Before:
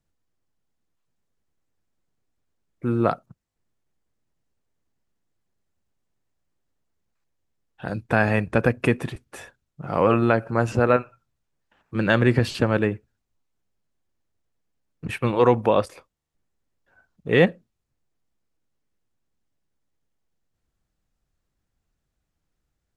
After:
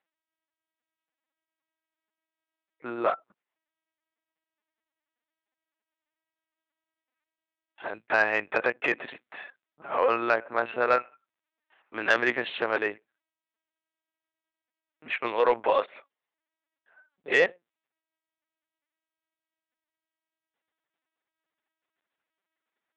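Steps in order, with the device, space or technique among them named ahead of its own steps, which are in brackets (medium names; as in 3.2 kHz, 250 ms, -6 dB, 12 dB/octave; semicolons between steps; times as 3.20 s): talking toy (LPC vocoder at 8 kHz pitch kept; high-pass 580 Hz 12 dB/octave; peaking EQ 2 kHz +4 dB 0.55 oct; saturation -9.5 dBFS, distortion -21 dB)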